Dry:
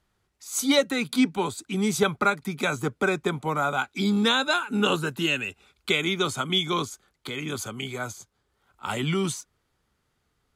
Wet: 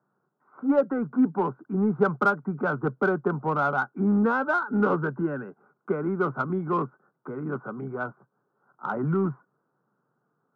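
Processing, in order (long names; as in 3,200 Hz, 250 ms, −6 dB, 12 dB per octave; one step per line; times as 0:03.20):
Chebyshev band-pass filter 130–1,500 Hz, order 5
in parallel at −9 dB: soft clipping −27 dBFS, distortion −8 dB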